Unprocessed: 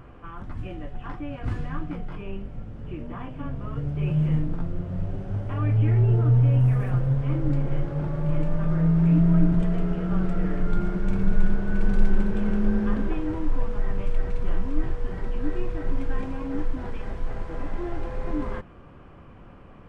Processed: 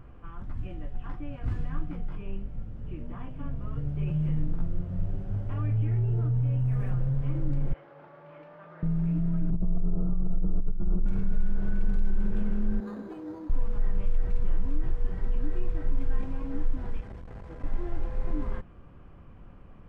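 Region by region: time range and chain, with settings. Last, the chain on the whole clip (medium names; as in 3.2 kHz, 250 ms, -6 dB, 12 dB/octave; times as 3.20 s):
7.73–8.83 s: high-pass 700 Hz + distance through air 260 m
9.50–11.06 s: steep low-pass 1.3 kHz 72 dB/octave + tilt EQ -1.5 dB/octave + compressor with a negative ratio -17 dBFS, ratio -0.5
12.80–13.50 s: high-pass 290 Hz + treble shelf 2.7 kHz -12 dB + decimation joined by straight lines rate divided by 8×
17.00–17.64 s: high-pass 57 Hz + transformer saturation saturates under 160 Hz
whole clip: peaking EQ 190 Hz +2 dB; peak limiter -17 dBFS; bass shelf 97 Hz +10.5 dB; trim -8 dB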